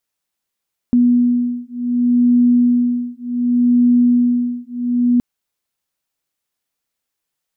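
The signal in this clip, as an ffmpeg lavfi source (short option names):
-f lavfi -i "aevalsrc='0.188*(sin(2*PI*243*t)+sin(2*PI*243.67*t))':d=4.27:s=44100"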